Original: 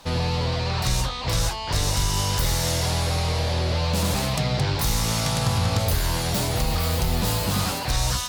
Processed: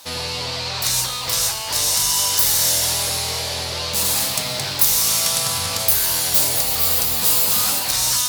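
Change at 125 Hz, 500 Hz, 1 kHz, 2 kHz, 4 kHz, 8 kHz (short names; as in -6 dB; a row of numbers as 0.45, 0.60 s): -10.5, -2.0, -0.5, +3.0, +7.0, +11.5 dB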